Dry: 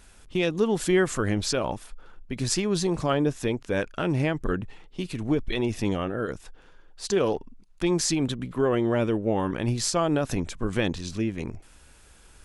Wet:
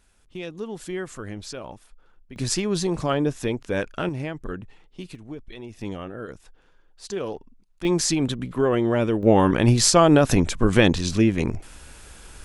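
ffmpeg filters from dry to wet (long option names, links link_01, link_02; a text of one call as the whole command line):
ffmpeg -i in.wav -af "asetnsamples=nb_out_samples=441:pad=0,asendcmd='2.36 volume volume 1dB;4.09 volume volume -5.5dB;5.15 volume volume -12.5dB;5.81 volume volume -6dB;7.85 volume volume 2.5dB;9.23 volume volume 9dB',volume=-9.5dB" out.wav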